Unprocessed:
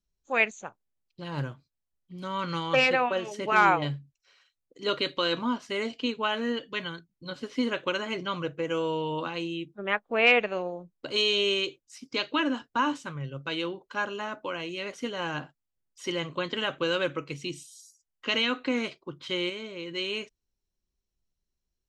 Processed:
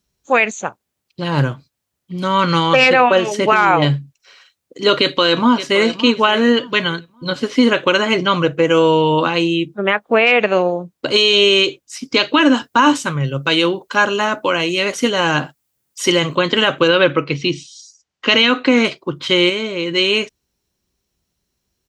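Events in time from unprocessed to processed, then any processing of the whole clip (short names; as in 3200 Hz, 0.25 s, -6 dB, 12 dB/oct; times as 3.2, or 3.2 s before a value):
4.99–5.81 echo throw 0.57 s, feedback 25%, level -14.5 dB
12.4–16.35 high shelf 7000 Hz +10 dB
16.87–18.83 LPF 4200 Hz -> 8200 Hz 24 dB/oct
whole clip: HPF 75 Hz; maximiser +18 dB; gain -1.5 dB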